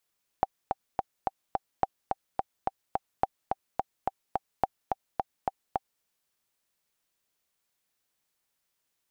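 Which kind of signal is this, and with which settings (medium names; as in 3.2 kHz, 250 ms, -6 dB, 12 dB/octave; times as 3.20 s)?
metronome 214 bpm, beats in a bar 5, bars 4, 776 Hz, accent 4 dB -9.5 dBFS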